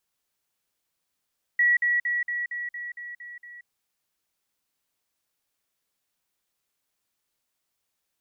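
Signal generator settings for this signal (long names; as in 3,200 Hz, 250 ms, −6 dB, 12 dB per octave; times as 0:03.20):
level staircase 1,930 Hz −17 dBFS, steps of −3 dB, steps 9, 0.18 s 0.05 s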